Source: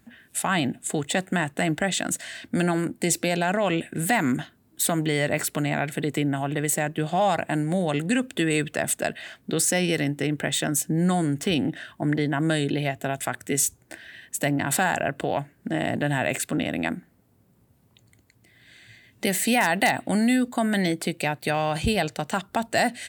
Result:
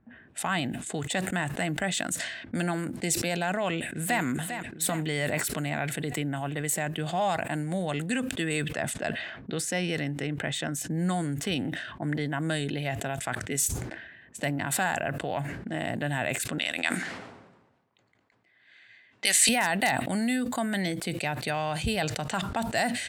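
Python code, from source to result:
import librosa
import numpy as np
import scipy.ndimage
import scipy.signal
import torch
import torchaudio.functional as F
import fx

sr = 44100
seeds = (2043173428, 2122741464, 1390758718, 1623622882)

y = fx.echo_throw(x, sr, start_s=3.68, length_s=0.54, ms=400, feedback_pct=50, wet_db=-8.5)
y = fx.high_shelf(y, sr, hz=7100.0, db=-11.5, at=(8.72, 10.81))
y = fx.weighting(y, sr, curve='ITU-R 468', at=(16.58, 19.49))
y = fx.env_lowpass(y, sr, base_hz=1200.0, full_db=-23.5)
y = fx.dynamic_eq(y, sr, hz=340.0, q=0.94, threshold_db=-36.0, ratio=4.0, max_db=-4)
y = fx.sustainer(y, sr, db_per_s=49.0)
y = F.gain(torch.from_numpy(y), -4.0).numpy()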